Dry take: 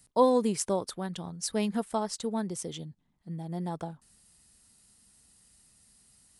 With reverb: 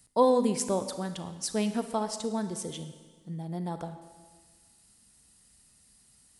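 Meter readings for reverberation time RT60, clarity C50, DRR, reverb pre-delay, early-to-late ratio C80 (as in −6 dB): 1.5 s, 10.0 dB, 9.0 dB, 36 ms, 11.5 dB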